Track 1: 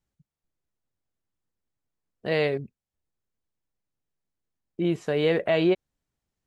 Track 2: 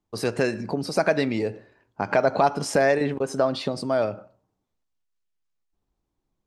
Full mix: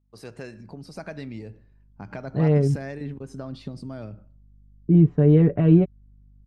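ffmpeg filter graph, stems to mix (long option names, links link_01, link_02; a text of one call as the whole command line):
ffmpeg -i stem1.wav -i stem2.wav -filter_complex "[0:a]lowpass=1100,aecho=1:1:6.9:0.61,adelay=100,volume=-0.5dB[link_01];[1:a]aeval=exprs='val(0)+0.00224*(sin(2*PI*50*n/s)+sin(2*PI*2*50*n/s)/2+sin(2*PI*3*50*n/s)/3+sin(2*PI*4*50*n/s)/4+sin(2*PI*5*50*n/s)/5)':channel_layout=same,volume=-15dB[link_02];[link_01][link_02]amix=inputs=2:normalize=0,asubboost=boost=8.5:cutoff=220" out.wav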